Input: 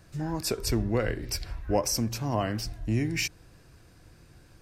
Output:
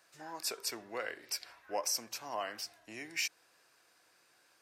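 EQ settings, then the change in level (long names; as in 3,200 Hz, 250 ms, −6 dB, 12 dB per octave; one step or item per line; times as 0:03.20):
high-pass filter 730 Hz 12 dB per octave
−4.5 dB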